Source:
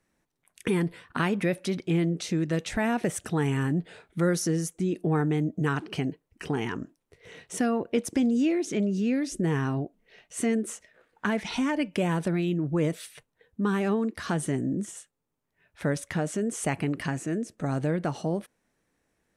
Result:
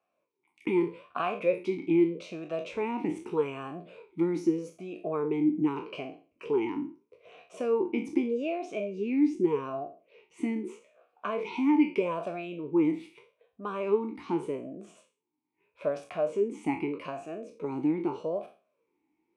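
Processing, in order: spectral sustain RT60 0.36 s; talking filter a-u 0.81 Hz; trim +8 dB

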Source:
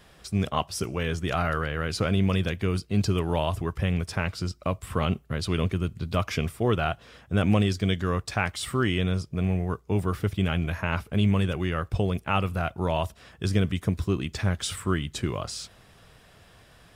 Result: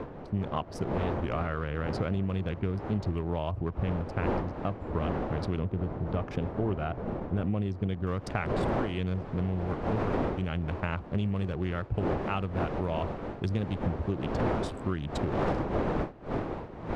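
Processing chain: local Wiener filter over 25 samples; wind noise 580 Hz -27 dBFS; low-pass 1.9 kHz 6 dB/octave, from 5.59 s 1 kHz, from 8.07 s 3.6 kHz; compression 6:1, threshold -26 dBFS, peak gain reduction 13.5 dB; warped record 33 1/3 rpm, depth 160 cents

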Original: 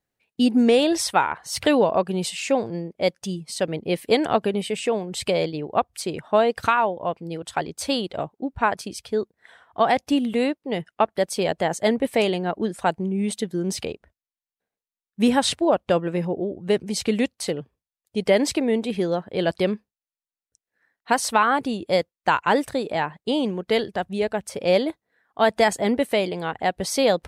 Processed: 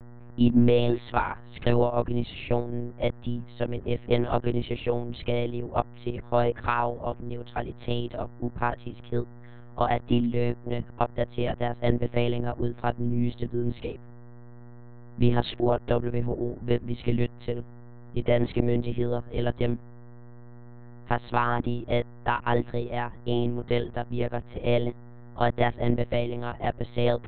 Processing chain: bass shelf 320 Hz +9.5 dB; mains buzz 100 Hz, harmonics 20, -37 dBFS -8 dB/octave; monotone LPC vocoder at 8 kHz 120 Hz; trim -7 dB

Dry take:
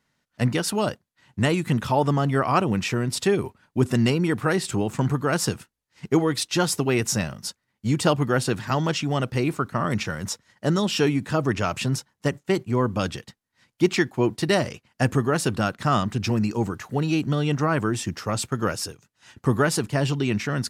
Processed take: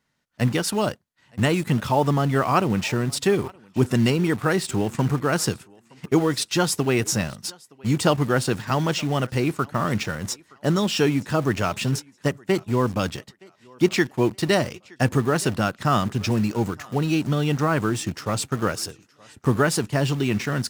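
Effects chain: thinning echo 919 ms, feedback 33%, high-pass 310 Hz, level -22 dB; in parallel at -10 dB: bit crusher 5-bit; on the sum: trim -1.5 dB

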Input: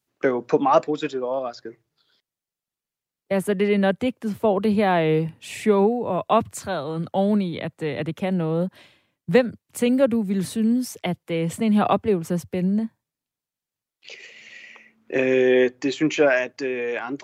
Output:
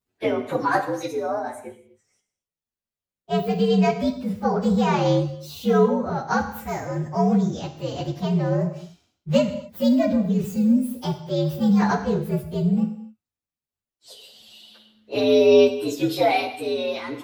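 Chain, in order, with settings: frequency axis rescaled in octaves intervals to 120%; bass shelf 96 Hz +7 dB; gated-style reverb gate 290 ms falling, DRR 6.5 dB

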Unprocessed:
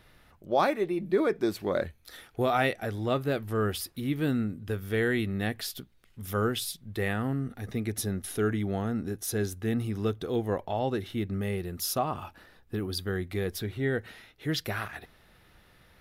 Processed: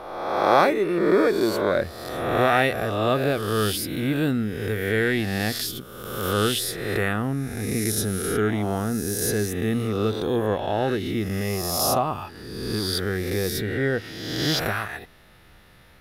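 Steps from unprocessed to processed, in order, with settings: reverse spectral sustain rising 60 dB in 1.34 s; trim +3.5 dB

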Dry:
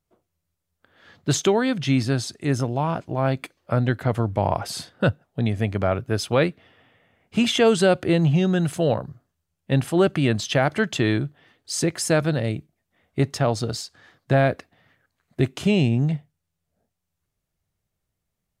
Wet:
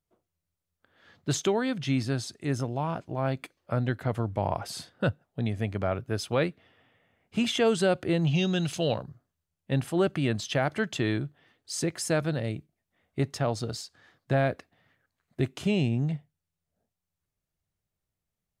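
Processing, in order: 8.27–9.03 s: high-order bell 4 kHz +10 dB; trim -6.5 dB

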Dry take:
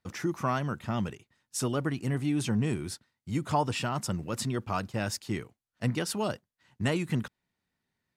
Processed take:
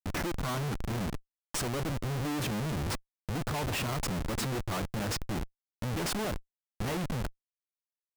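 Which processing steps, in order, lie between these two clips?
Schmitt trigger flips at -36 dBFS

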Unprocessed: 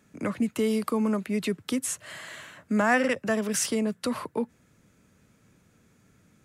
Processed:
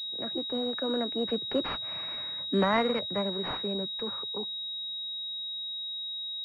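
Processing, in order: Doppler pass-by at 2.03 s, 40 m/s, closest 25 m; formant shift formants +4 st; class-D stage that switches slowly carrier 3.8 kHz; trim +1.5 dB

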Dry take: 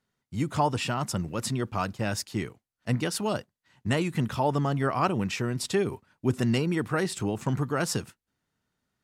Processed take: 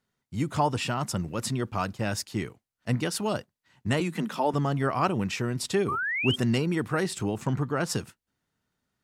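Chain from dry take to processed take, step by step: 4.00–4.54 s: steep high-pass 160 Hz 72 dB/octave; 5.88–6.36 s: painted sound rise 1.1–3.3 kHz -29 dBFS; 7.46–7.89 s: treble shelf 8.4 kHz -> 4.5 kHz -9.5 dB

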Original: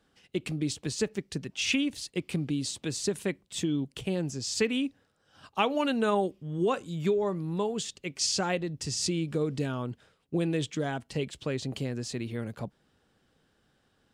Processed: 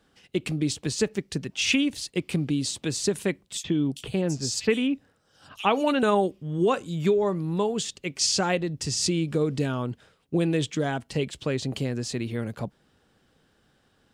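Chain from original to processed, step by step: 3.57–6.03 s: bands offset in time highs, lows 70 ms, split 3.4 kHz; trim +4.5 dB

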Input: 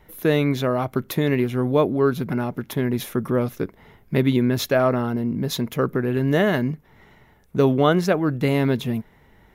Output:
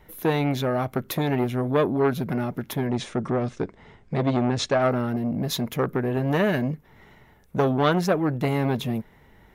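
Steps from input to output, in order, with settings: 2.87–4.82 s: steep low-pass 8.9 kHz 72 dB/octave; transformer saturation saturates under 940 Hz

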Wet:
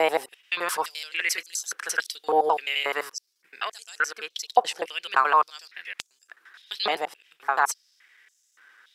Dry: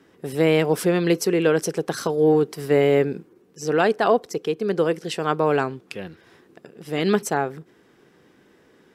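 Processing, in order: slices played last to first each 86 ms, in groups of 6; step-sequenced high-pass 3.5 Hz 810–6700 Hz

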